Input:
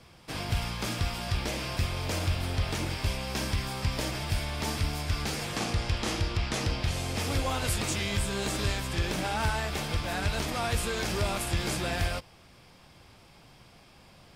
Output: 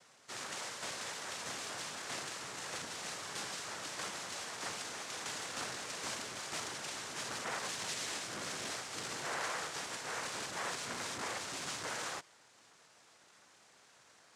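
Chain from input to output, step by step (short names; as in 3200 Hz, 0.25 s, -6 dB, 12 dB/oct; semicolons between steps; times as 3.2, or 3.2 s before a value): HPF 470 Hz 12 dB/oct; noise vocoder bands 3; core saturation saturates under 2000 Hz; gain -5 dB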